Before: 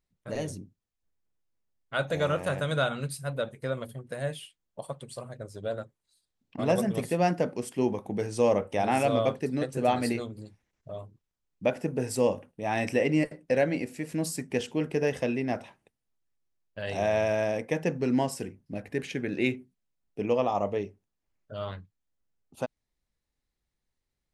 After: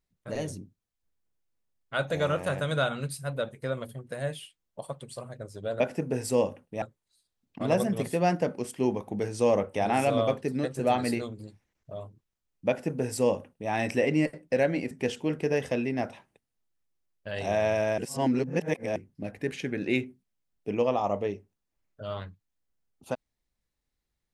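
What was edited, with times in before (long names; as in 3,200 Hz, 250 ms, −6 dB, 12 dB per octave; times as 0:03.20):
0:11.66–0:12.68: duplicate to 0:05.80
0:13.89–0:14.42: remove
0:17.49–0:18.47: reverse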